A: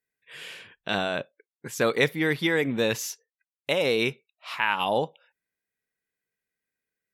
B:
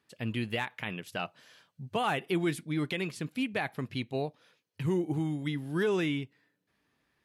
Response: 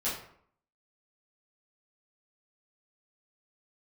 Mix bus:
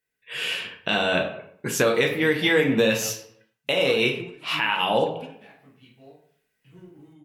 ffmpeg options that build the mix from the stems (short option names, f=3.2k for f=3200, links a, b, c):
-filter_complex "[0:a]volume=-0.5dB,asplit=3[a][b][c];[b]volume=-5dB[d];[1:a]asoftclip=type=hard:threshold=-24dB,adelay=1850,volume=-10dB,asplit=2[e][f];[f]volume=-21dB[g];[c]apad=whole_len=401234[h];[e][h]sidechaingate=range=-33dB:threshold=-51dB:ratio=16:detection=peak[i];[2:a]atrim=start_sample=2205[j];[d][g]amix=inputs=2:normalize=0[k];[k][j]afir=irnorm=-1:irlink=0[l];[a][i][l]amix=inputs=3:normalize=0,equalizer=f=2.8k:t=o:w=0.23:g=6.5,dynaudnorm=f=200:g=3:m=7dB,alimiter=limit=-10dB:level=0:latency=1:release=453"